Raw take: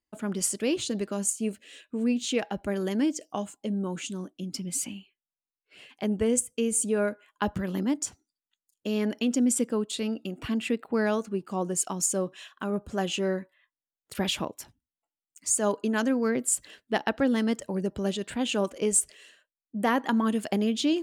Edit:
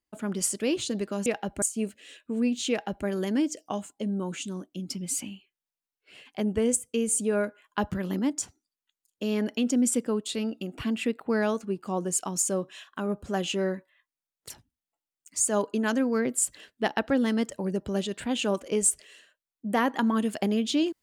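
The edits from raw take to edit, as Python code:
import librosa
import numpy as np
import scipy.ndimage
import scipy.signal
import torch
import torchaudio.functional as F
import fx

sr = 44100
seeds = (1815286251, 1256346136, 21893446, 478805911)

y = fx.edit(x, sr, fx.duplicate(start_s=2.34, length_s=0.36, to_s=1.26),
    fx.cut(start_s=14.14, length_s=0.46), tone=tone)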